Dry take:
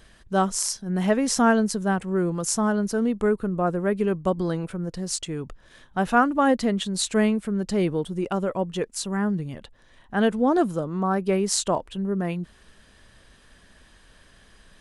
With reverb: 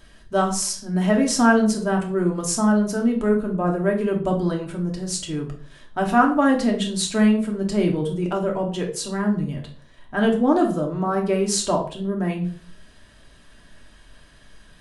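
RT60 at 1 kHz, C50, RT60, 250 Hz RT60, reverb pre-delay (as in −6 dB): 0.40 s, 9.0 dB, 0.50 s, 0.60 s, 3 ms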